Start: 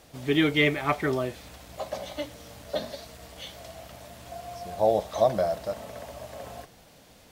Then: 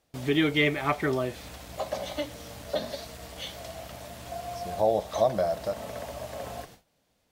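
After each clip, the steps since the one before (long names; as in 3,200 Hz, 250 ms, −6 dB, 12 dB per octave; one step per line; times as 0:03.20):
noise gate with hold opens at −40 dBFS
in parallel at +2 dB: downward compressor, threshold −31 dBFS, peak gain reduction 14 dB
on the sum: level −4 dB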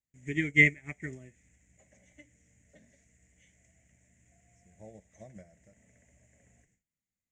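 drawn EQ curve 200 Hz 0 dB, 1,200 Hz −25 dB, 2,000 Hz +4 dB, 4,400 Hz −29 dB, 7,000 Hz +9 dB, 12,000 Hz −26 dB
expander for the loud parts 2.5 to 1, over −39 dBFS
level +6 dB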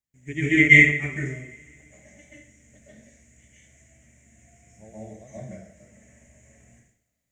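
convolution reverb, pre-delay 125 ms, DRR −9.5 dB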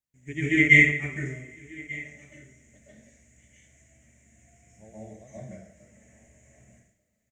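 single-tap delay 1,190 ms −21 dB
level −3 dB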